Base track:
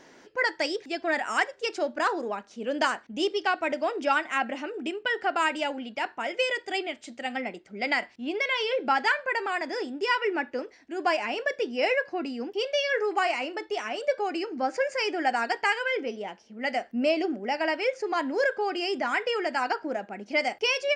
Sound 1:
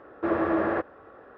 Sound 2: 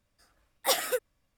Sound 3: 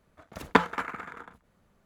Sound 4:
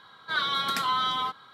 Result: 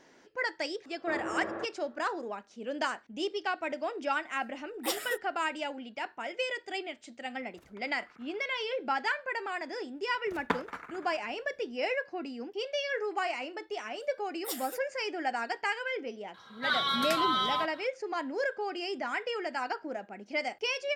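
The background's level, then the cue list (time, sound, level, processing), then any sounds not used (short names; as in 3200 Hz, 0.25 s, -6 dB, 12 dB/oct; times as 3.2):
base track -6.5 dB
0.84 add 1 -11.5 dB + HPF 94 Hz
4.19 add 2 -7 dB
7.22 add 3 -16.5 dB + compressor, threshold -38 dBFS
9.95 add 3 -9.5 dB
13.8 add 2 -16 dB + high shelf 6500 Hz +11.5 dB
16.34 add 4 -2 dB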